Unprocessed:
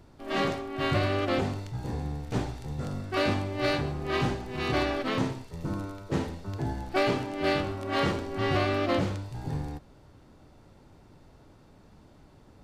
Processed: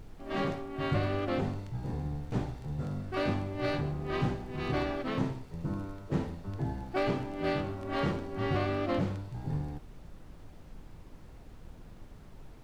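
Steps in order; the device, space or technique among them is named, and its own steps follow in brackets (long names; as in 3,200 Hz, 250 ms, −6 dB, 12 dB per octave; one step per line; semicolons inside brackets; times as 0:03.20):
car interior (parametric band 160 Hz +5 dB 0.85 octaves; high-shelf EQ 2,900 Hz −7.5 dB; brown noise bed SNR 13 dB)
level −4.5 dB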